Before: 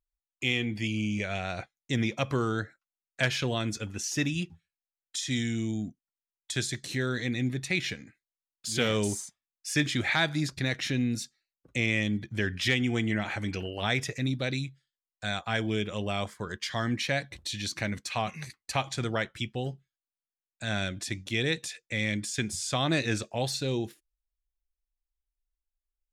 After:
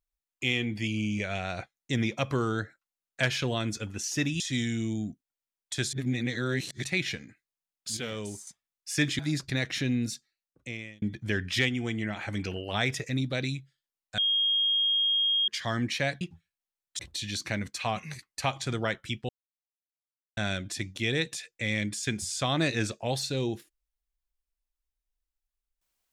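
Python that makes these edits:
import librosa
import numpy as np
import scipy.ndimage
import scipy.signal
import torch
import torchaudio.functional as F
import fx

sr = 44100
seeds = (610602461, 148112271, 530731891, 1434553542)

y = fx.edit(x, sr, fx.move(start_s=4.4, length_s=0.78, to_s=17.3),
    fx.reverse_span(start_s=6.71, length_s=0.91),
    fx.clip_gain(start_s=8.75, length_s=0.5, db=-9.0),
    fx.cut(start_s=9.97, length_s=0.31),
    fx.fade_out_span(start_s=11.18, length_s=0.93),
    fx.clip_gain(start_s=12.78, length_s=0.59, db=-3.5),
    fx.bleep(start_s=15.27, length_s=1.3, hz=3250.0, db=-22.5),
    fx.silence(start_s=19.6, length_s=1.08), tone=tone)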